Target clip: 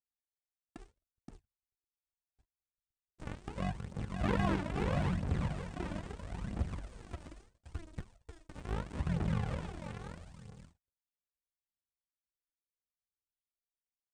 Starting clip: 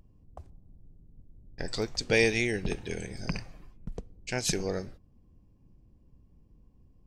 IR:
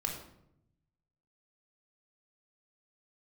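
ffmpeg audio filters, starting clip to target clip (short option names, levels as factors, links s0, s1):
-filter_complex "[0:a]acrossover=split=4500[s0][s1];[s0]asubboost=boost=2:cutoff=92[s2];[s1]acompressor=threshold=0.00355:ratio=16[s3];[s2][s3]amix=inputs=2:normalize=0,acrusher=samples=41:mix=1:aa=0.000001:lfo=1:lforange=41:lforate=2.6,aecho=1:1:265|530|795:0.501|0.0952|0.0181,asetrate=22050,aresample=44100,highpass=66,asetrate=38170,aresample=44100,atempo=1.15535,agate=range=0.00398:threshold=0.00178:ratio=16:detection=peak,aphaser=in_gain=1:out_gain=1:delay=3.5:decay=0.53:speed=0.76:type=triangular,asoftclip=type=tanh:threshold=0.126,acrossover=split=3000[s4][s5];[s5]acompressor=threshold=0.00112:ratio=4:attack=1:release=60[s6];[s4][s6]amix=inputs=2:normalize=0,highshelf=f=7300:g=10,volume=0.631"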